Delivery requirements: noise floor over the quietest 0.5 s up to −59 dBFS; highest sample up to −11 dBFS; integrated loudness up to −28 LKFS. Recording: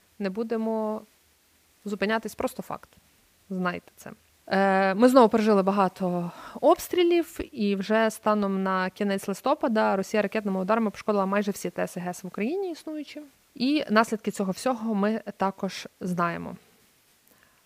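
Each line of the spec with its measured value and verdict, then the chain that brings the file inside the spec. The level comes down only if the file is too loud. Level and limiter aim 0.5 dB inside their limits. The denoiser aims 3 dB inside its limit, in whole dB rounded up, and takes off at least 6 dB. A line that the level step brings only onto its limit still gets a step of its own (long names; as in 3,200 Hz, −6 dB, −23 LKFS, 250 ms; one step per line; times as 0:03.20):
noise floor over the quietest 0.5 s −63 dBFS: in spec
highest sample −4.5 dBFS: out of spec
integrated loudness −26.0 LKFS: out of spec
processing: level −2.5 dB
brickwall limiter −11.5 dBFS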